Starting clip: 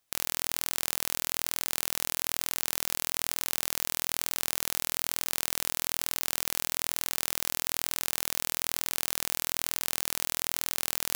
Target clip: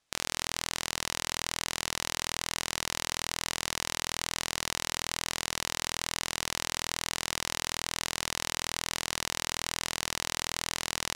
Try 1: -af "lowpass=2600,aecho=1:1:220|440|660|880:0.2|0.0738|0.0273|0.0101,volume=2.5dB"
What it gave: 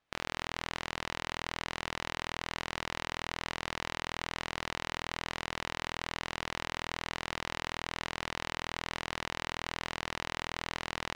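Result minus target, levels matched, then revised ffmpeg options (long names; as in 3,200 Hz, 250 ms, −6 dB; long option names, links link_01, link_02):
8,000 Hz band −10.0 dB
-af "lowpass=7000,aecho=1:1:220|440|660|880:0.2|0.0738|0.0273|0.0101,volume=2.5dB"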